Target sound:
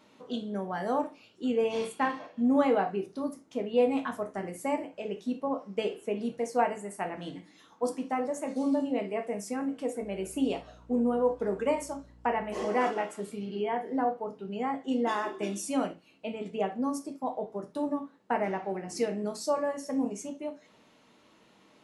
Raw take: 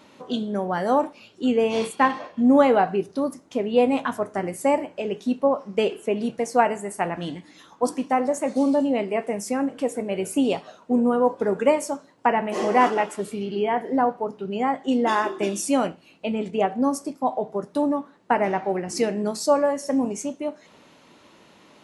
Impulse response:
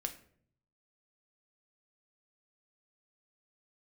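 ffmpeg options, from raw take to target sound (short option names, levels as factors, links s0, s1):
-filter_complex "[1:a]atrim=start_sample=2205,atrim=end_sample=3528[s0];[0:a][s0]afir=irnorm=-1:irlink=0,asettb=1/sr,asplit=3[s1][s2][s3];[s1]atrim=end=10.024[s4];[s2]atrim=start=10.02:end=12.66,asetpts=PTS-STARTPTS,afade=t=in:d=0.004:c=qsin,afade=t=out:st=2.636:d=0.004:c=qsin,aeval=exprs='val(0)+0.00501*(sin(2*PI*60*n/s)+sin(2*PI*2*60*n/s)/2+sin(2*PI*3*60*n/s)/3+sin(2*PI*4*60*n/s)/4+sin(2*PI*5*60*n/s)/5)':c=same[s5];[s3]atrim=start=12.656[s6];[s4][s5]acrossfade=d=0.004:c1=hsin:c2=qsin[s7];[s7][s6]acrossfade=d=0.004:c1=qsin:c2=hsin,volume=0.398"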